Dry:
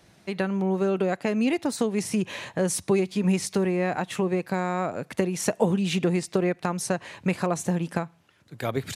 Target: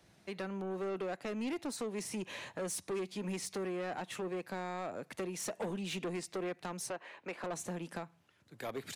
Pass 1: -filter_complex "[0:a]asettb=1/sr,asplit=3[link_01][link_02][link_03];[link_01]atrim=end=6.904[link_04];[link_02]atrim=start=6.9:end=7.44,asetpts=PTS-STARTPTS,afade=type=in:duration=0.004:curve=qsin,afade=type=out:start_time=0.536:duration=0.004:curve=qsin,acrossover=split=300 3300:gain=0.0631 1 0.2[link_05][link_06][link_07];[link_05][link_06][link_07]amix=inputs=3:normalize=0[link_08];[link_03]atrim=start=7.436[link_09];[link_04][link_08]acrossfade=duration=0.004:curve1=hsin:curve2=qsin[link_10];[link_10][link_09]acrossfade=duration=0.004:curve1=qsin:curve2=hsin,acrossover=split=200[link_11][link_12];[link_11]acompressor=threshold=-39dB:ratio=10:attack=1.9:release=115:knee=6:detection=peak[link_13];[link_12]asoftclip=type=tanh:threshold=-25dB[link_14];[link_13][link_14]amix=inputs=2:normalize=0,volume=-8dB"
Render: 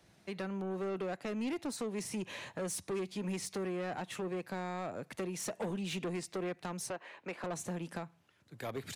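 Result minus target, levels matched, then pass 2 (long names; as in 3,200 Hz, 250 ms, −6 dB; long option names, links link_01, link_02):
downward compressor: peak gain reduction −10 dB
-filter_complex "[0:a]asettb=1/sr,asplit=3[link_01][link_02][link_03];[link_01]atrim=end=6.904[link_04];[link_02]atrim=start=6.9:end=7.44,asetpts=PTS-STARTPTS,afade=type=in:duration=0.004:curve=qsin,afade=type=out:start_time=0.536:duration=0.004:curve=qsin,acrossover=split=300 3300:gain=0.0631 1 0.2[link_05][link_06][link_07];[link_05][link_06][link_07]amix=inputs=3:normalize=0[link_08];[link_03]atrim=start=7.436[link_09];[link_04][link_08]acrossfade=duration=0.004:curve1=hsin:curve2=qsin[link_10];[link_10][link_09]acrossfade=duration=0.004:curve1=qsin:curve2=hsin,acrossover=split=200[link_11][link_12];[link_11]acompressor=threshold=-50dB:ratio=10:attack=1.9:release=115:knee=6:detection=peak[link_13];[link_12]asoftclip=type=tanh:threshold=-25dB[link_14];[link_13][link_14]amix=inputs=2:normalize=0,volume=-8dB"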